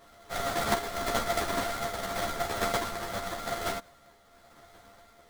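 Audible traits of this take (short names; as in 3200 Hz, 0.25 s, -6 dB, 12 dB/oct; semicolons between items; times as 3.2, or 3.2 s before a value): a buzz of ramps at a fixed pitch in blocks of 64 samples; tremolo triangle 0.89 Hz, depth 50%; aliases and images of a low sample rate 2700 Hz, jitter 20%; a shimmering, thickened sound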